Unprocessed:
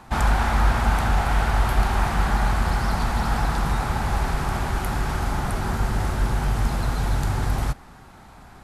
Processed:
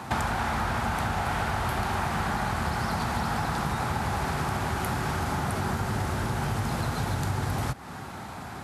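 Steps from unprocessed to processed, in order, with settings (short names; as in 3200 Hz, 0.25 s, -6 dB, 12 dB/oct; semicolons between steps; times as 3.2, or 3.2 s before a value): HPF 76 Hz 24 dB/oct; compressor 5:1, threshold -35 dBFS, peak gain reduction 13.5 dB; gain +8.5 dB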